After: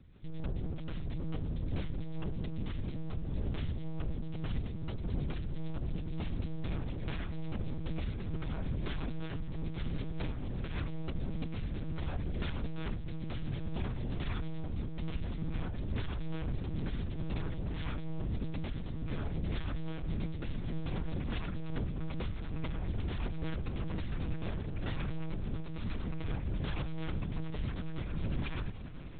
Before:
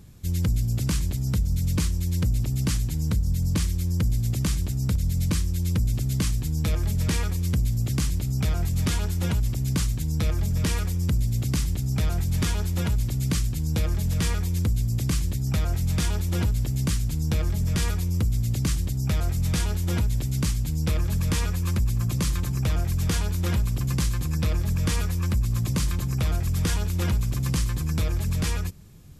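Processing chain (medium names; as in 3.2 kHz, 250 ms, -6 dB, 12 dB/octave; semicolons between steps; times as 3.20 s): level rider gain up to 4.5 dB; peak limiter -15.5 dBFS, peak gain reduction 4.5 dB; overload inside the chain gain 26 dB; echo that smears into a reverb 1041 ms, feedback 49%, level -11 dB; monotone LPC vocoder at 8 kHz 160 Hz; random flutter of the level, depth 55%; trim -5.5 dB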